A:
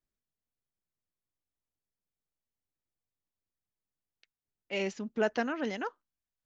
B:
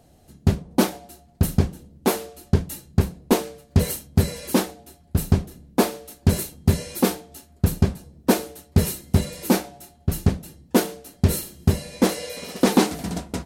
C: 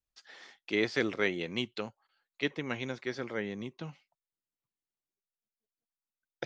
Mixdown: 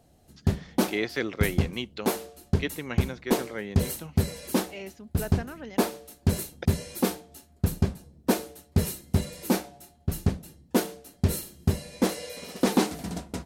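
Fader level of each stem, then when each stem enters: −7.0, −5.5, +0.5 decibels; 0.00, 0.00, 0.20 seconds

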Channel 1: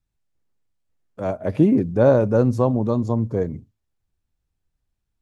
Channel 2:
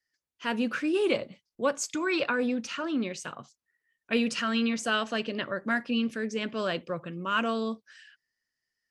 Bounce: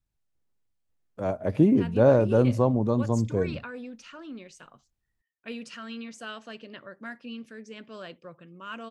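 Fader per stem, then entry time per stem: −3.5, −11.5 decibels; 0.00, 1.35 seconds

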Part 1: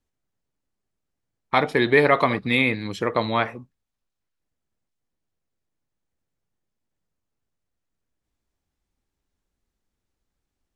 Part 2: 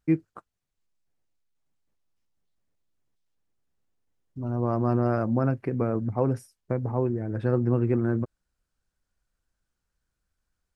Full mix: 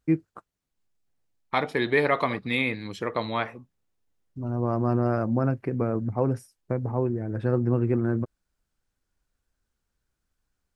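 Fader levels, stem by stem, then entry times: −5.5, 0.0 decibels; 0.00, 0.00 seconds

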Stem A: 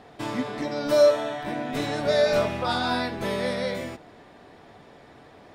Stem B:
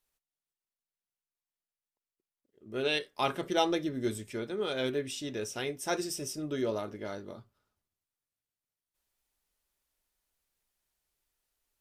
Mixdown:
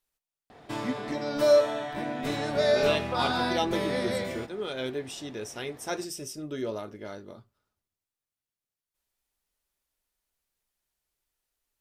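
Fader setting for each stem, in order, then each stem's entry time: −2.5, −1.0 decibels; 0.50, 0.00 seconds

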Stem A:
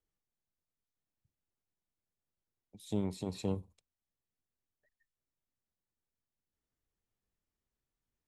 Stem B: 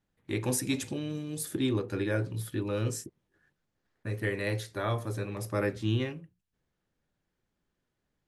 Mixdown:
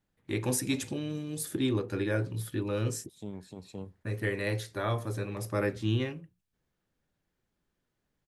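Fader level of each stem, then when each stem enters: −7.0, 0.0 decibels; 0.30, 0.00 seconds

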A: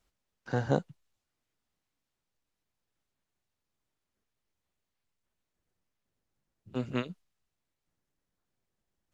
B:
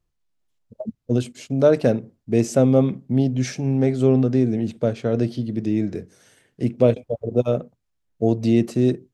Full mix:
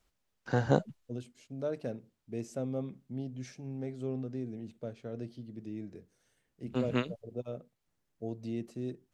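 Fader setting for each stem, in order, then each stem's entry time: +1.5, −19.5 decibels; 0.00, 0.00 seconds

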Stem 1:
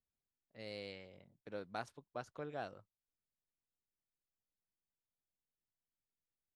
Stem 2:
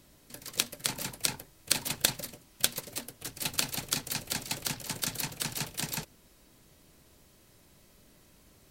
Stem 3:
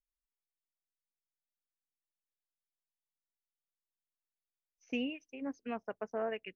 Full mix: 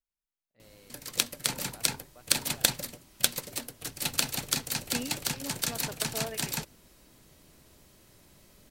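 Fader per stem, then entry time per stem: −11.0, +2.0, −2.5 decibels; 0.00, 0.60, 0.00 seconds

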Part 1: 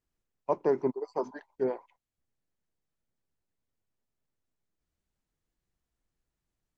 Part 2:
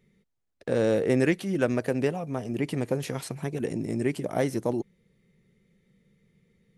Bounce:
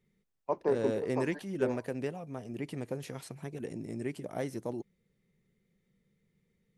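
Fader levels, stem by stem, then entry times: −3.5, −9.5 decibels; 0.00, 0.00 seconds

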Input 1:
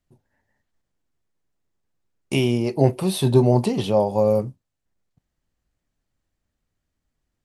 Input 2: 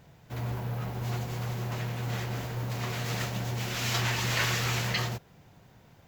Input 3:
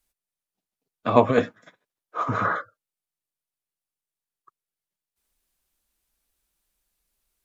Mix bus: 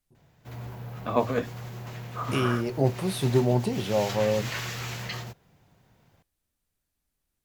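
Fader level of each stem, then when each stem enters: −6.5, −5.5, −7.5 decibels; 0.00, 0.15, 0.00 seconds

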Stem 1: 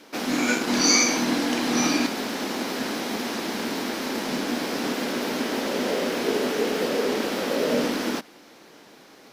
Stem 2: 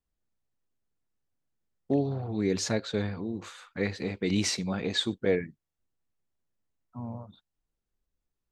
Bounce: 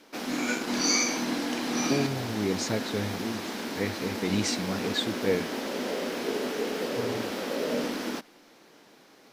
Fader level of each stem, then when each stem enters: −6.0, −1.0 decibels; 0.00, 0.00 seconds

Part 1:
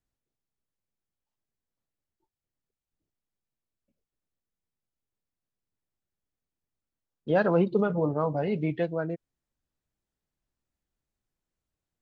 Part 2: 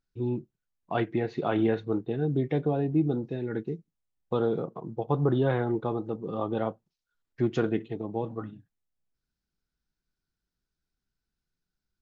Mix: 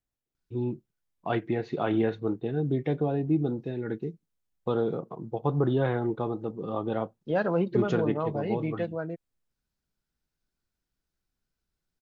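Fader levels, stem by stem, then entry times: −3.0, −0.5 decibels; 0.00, 0.35 seconds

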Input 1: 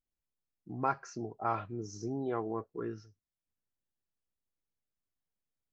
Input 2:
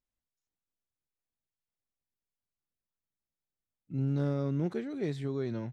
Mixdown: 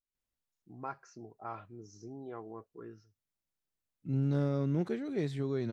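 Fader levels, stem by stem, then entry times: −9.5, 0.0 decibels; 0.00, 0.15 seconds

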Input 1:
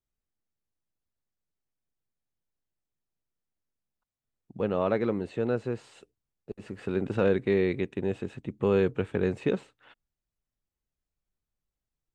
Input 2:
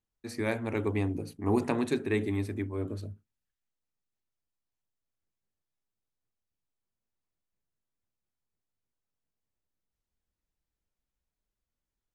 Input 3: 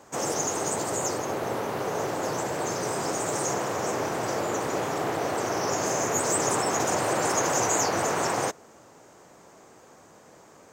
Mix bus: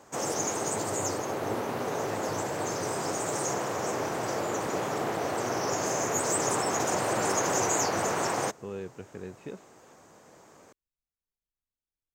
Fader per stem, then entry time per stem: −14.0, −12.5, −2.5 decibels; 0.00, 0.00, 0.00 seconds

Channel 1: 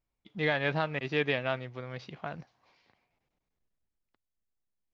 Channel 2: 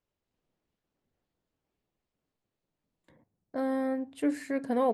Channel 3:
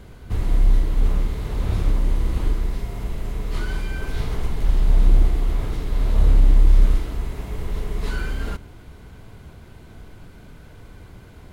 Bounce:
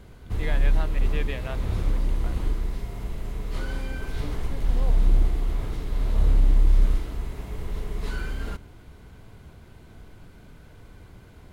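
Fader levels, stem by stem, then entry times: −6.0, −13.5, −4.5 decibels; 0.00, 0.00, 0.00 seconds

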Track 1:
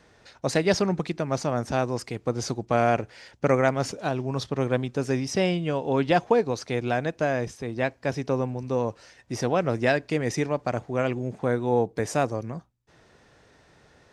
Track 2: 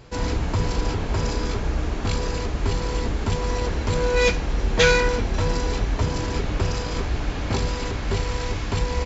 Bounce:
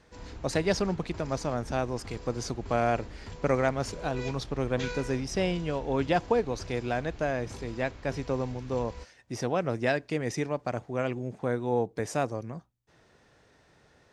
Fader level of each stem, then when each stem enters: −4.5, −19.5 decibels; 0.00, 0.00 seconds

